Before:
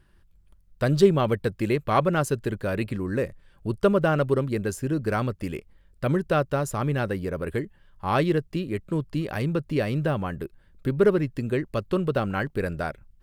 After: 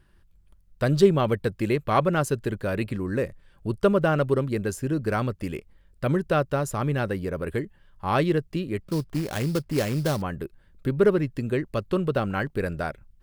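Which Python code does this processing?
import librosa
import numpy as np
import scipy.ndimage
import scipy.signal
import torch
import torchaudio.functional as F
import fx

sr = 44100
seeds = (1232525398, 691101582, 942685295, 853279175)

y = fx.sample_hold(x, sr, seeds[0], rate_hz=4900.0, jitter_pct=20, at=(8.82, 10.22))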